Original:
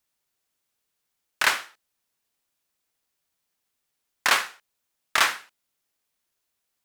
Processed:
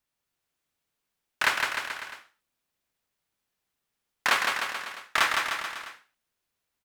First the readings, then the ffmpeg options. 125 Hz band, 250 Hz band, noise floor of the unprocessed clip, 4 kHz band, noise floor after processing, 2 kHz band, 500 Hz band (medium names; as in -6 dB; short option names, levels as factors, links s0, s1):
no reading, +1.0 dB, -80 dBFS, -2.5 dB, -84 dBFS, -0.5 dB, 0.0 dB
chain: -filter_complex "[0:a]bass=f=250:g=3,treble=f=4000:g=-5,asplit=2[s0][s1];[s1]aecho=0:1:160|304|433.6|550.2|655.2:0.631|0.398|0.251|0.158|0.1[s2];[s0][s2]amix=inputs=2:normalize=0,volume=0.75"